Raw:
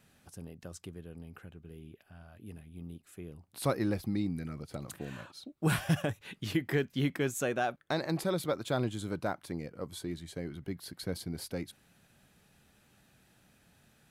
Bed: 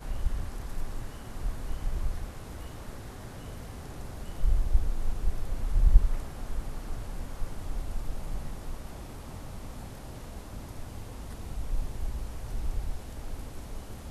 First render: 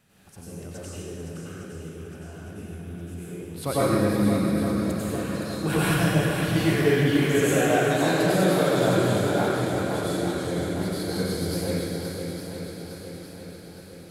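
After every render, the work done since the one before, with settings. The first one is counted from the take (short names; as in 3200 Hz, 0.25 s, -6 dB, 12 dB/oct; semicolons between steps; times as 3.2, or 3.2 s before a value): on a send: swung echo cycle 0.86 s, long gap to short 1.5:1, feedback 51%, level -7 dB; on the sum: plate-style reverb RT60 2.1 s, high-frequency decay 0.85×, pre-delay 80 ms, DRR -9.5 dB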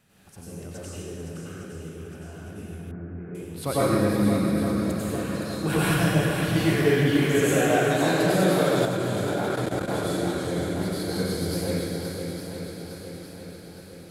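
2.91–3.35 steep low-pass 2000 Hz; 8.85–9.88 level quantiser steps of 13 dB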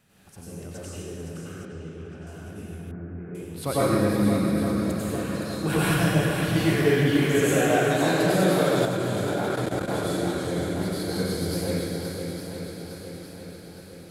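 1.65–2.27 air absorption 99 m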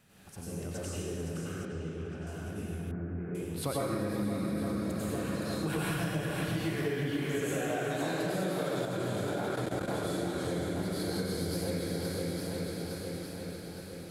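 compressor, threshold -30 dBFS, peak gain reduction 13.5 dB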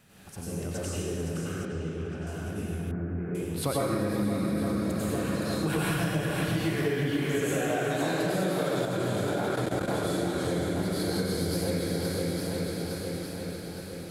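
gain +4.5 dB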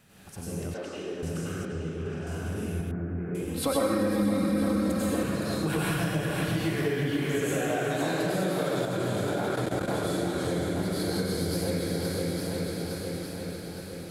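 0.74–1.23 three-band isolator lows -23 dB, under 220 Hz, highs -20 dB, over 4500 Hz; 2.01–2.81 doubler 46 ms -2.5 dB; 3.47–5.23 comb 3.8 ms, depth 80%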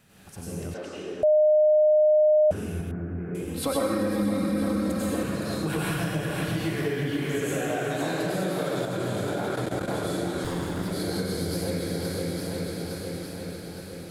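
1.23–2.51 bleep 611 Hz -15.5 dBFS; 10.44–10.91 minimum comb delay 0.58 ms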